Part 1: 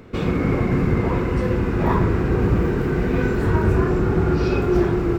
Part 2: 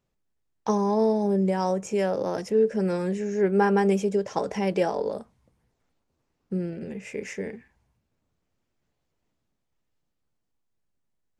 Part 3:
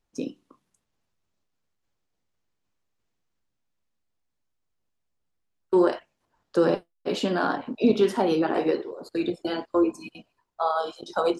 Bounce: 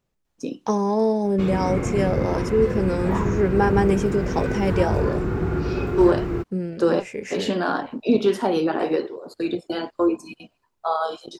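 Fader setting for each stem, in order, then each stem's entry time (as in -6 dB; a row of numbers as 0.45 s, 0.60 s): -5.0 dB, +2.0 dB, +1.5 dB; 1.25 s, 0.00 s, 0.25 s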